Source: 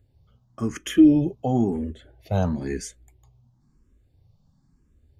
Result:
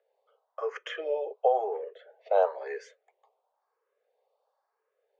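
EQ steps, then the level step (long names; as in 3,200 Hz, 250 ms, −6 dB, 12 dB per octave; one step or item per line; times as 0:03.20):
Butterworth high-pass 450 Hz 96 dB per octave
high-frequency loss of the air 200 metres
spectral tilt −4 dB per octave
+3.5 dB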